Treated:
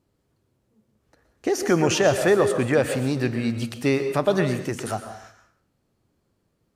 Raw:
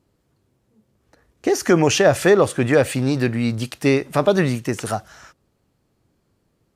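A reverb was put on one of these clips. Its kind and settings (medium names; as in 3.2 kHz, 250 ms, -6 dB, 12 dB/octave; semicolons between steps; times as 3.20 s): plate-style reverb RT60 0.59 s, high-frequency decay 0.75×, pre-delay 105 ms, DRR 8 dB; trim -4.5 dB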